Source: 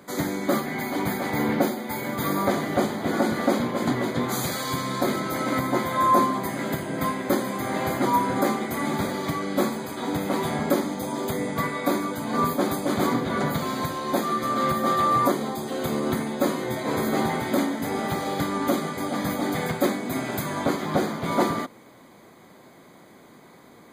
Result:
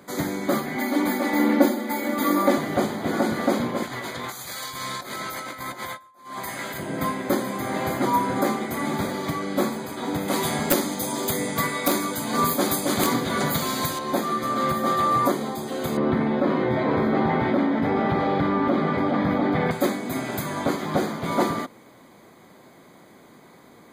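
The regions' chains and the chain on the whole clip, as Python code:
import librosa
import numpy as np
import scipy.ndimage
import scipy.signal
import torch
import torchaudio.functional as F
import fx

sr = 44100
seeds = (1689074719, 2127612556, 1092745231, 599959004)

y = fx.chain(x, sr, fx.low_shelf_res(hz=170.0, db=-11.5, q=1.5),
    fx.comb(ms=3.5, depth=0.73), at=(0.76, 2.58))
y = fx.chain(y, sr, fx.peak_eq(hz=230.0, db=-14.0, octaves=3.0),
    fx.over_compress(threshold_db=-34.0, ratio=-0.5),
    fx.quant_float(bits=6), at=(3.83, 6.78))
y = fx.chain(y, sr, fx.high_shelf(hz=3000.0, db=11.0),
    fx.overflow_wrap(gain_db=9.0), at=(10.28, 13.99))
y = fx.chain(y, sr, fx.air_absorb(metres=370.0),
    fx.env_flatten(amount_pct=70), at=(15.97, 19.71))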